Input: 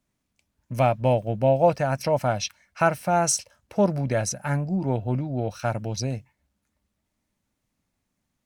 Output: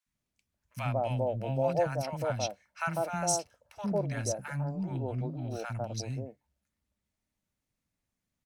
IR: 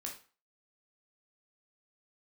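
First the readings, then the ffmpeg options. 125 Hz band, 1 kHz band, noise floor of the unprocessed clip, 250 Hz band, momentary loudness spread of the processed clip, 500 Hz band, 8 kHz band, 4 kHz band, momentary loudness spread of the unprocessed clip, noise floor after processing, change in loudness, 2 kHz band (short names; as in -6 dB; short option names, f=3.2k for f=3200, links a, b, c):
-7.5 dB, -9.5 dB, -79 dBFS, -9.0 dB, 8 LU, -9.0 dB, -7.0 dB, -7.0 dB, 9 LU, under -85 dBFS, -8.5 dB, -8.0 dB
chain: -filter_complex "[0:a]acrossover=split=270|900[a][b][c];[a]adelay=60[d];[b]adelay=150[e];[d][e][c]amix=inputs=3:normalize=0,volume=-7dB"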